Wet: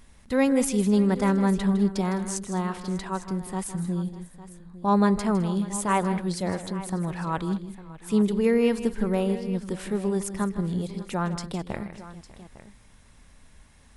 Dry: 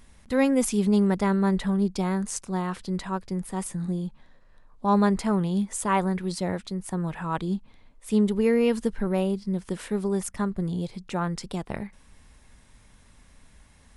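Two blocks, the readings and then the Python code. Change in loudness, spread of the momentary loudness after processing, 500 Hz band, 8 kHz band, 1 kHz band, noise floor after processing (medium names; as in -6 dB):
+0.5 dB, 11 LU, +0.5 dB, +0.5 dB, +0.5 dB, -53 dBFS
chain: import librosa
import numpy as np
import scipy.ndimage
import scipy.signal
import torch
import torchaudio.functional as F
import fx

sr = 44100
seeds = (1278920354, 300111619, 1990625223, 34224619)

y = fx.echo_multitap(x, sr, ms=(158, 210, 595, 854), db=(-12.5, -20.0, -20.0, -16.0))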